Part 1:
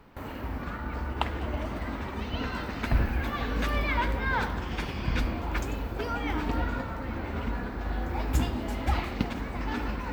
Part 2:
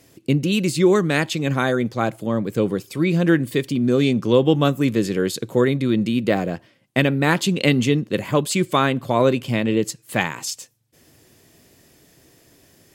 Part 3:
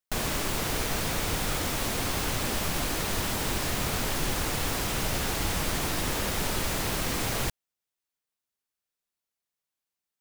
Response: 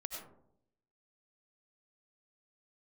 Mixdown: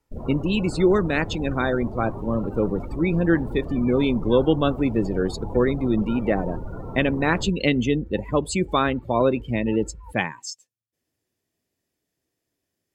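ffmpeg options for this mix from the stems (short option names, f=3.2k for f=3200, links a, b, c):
-filter_complex "[0:a]aecho=1:1:2.2:0.65,acompressor=threshold=-34dB:ratio=6,volume=-1dB[a];[1:a]equalizer=f=140:t=o:w=0.26:g=-5,volume=-2.5dB[b];[2:a]afwtdn=0.0282,volume=-0.5dB[c];[a][b][c]amix=inputs=3:normalize=0,afftdn=nr=24:nf=-29"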